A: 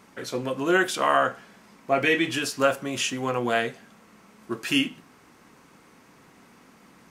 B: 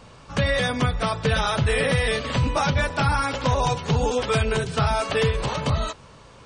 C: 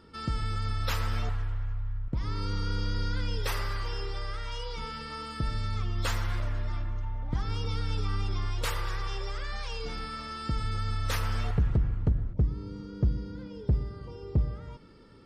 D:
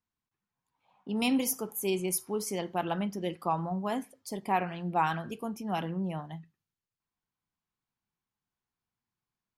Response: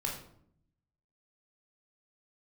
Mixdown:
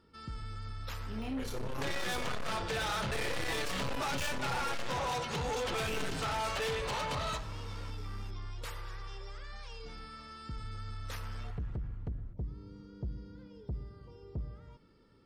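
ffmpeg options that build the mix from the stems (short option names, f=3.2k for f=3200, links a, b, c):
-filter_complex "[0:a]aeval=exprs='(tanh(25.1*val(0)+0.65)-tanh(0.65))/25.1':c=same,adelay=1200,volume=-1dB,asplit=2[a][b];[b]volume=-7dB[c];[1:a]asplit=2[d][e];[e]highpass=f=720:p=1,volume=14dB,asoftclip=type=tanh:threshold=-12dB[f];[d][f]amix=inputs=2:normalize=0,lowpass=f=7.2k:p=1,volume=-6dB,adelay=1450,volume=-11dB,asplit=2[g][h];[h]volume=-11dB[i];[2:a]volume=-10dB[j];[3:a]deesser=1,flanger=delay=19.5:depth=7.5:speed=0.41,volume=-5dB,asplit=2[k][l];[l]apad=whole_len=366243[m];[a][m]sidechaincompress=threshold=-52dB:ratio=8:attack=16:release=252[n];[4:a]atrim=start_sample=2205[o];[c][i]amix=inputs=2:normalize=0[p];[p][o]afir=irnorm=-1:irlink=0[q];[n][g][j][k][q]amix=inputs=5:normalize=0,asoftclip=type=tanh:threshold=-31.5dB"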